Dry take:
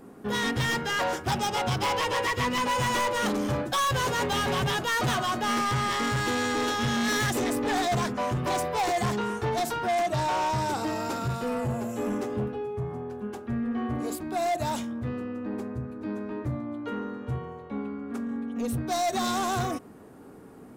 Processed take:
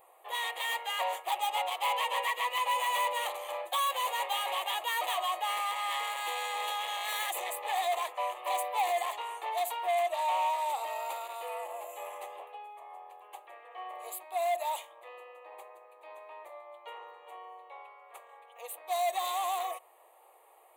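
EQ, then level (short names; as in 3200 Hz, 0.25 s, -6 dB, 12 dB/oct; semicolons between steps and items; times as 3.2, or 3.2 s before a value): brick-wall FIR high-pass 350 Hz; high shelf 10000 Hz +7 dB; fixed phaser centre 1500 Hz, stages 6; -1.5 dB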